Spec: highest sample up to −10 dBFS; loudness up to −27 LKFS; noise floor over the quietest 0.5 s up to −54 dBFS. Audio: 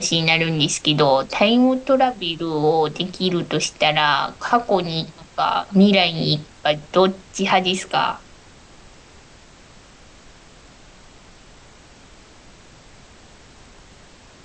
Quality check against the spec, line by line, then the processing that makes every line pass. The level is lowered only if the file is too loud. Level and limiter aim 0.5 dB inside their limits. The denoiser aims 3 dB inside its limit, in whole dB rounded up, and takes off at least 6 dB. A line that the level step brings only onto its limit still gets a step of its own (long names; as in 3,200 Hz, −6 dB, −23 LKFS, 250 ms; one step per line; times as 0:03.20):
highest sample −3.5 dBFS: out of spec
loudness −19.0 LKFS: out of spec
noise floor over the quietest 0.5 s −47 dBFS: out of spec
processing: level −8.5 dB